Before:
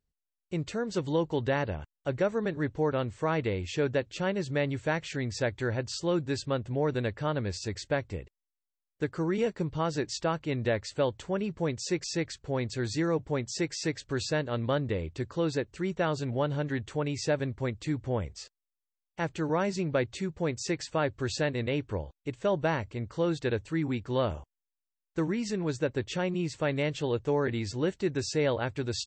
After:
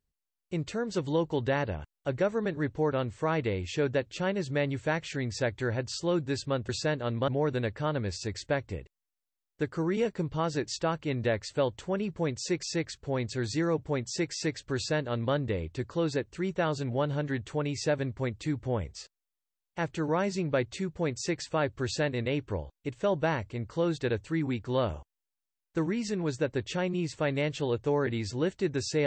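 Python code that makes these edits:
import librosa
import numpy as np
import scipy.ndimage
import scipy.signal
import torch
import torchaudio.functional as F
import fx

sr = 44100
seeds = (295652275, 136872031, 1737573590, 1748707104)

y = fx.edit(x, sr, fx.duplicate(start_s=14.16, length_s=0.59, to_s=6.69), tone=tone)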